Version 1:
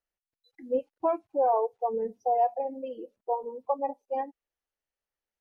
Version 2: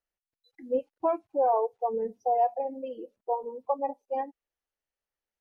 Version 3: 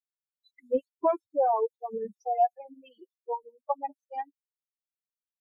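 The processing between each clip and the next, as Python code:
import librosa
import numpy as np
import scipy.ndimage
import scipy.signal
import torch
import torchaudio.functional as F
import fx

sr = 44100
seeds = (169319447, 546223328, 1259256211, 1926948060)

y1 = x
y2 = fx.bin_expand(y1, sr, power=3.0)
y2 = F.gain(torch.from_numpy(y2), 4.0).numpy()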